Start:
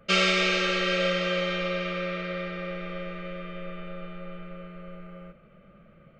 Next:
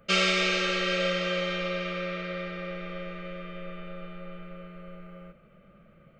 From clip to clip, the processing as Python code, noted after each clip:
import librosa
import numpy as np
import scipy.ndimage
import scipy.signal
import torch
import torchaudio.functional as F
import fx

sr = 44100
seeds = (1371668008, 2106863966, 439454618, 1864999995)

y = fx.high_shelf(x, sr, hz=7400.0, db=5.5)
y = y * librosa.db_to_amplitude(-2.0)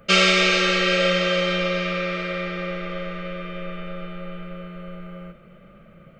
y = fx.echo_feedback(x, sr, ms=407, feedback_pct=59, wet_db=-19)
y = y * librosa.db_to_amplitude(7.5)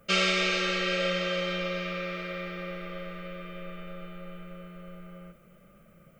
y = fx.dmg_noise_colour(x, sr, seeds[0], colour='violet', level_db=-63.0)
y = y * librosa.db_to_amplitude(-8.5)